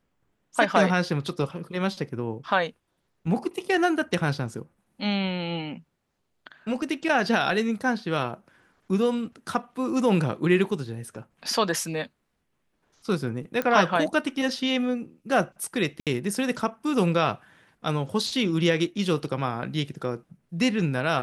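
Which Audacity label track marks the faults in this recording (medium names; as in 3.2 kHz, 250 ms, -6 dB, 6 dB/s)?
13.620000	13.620000	pop -13 dBFS
16.000000	16.070000	dropout 67 ms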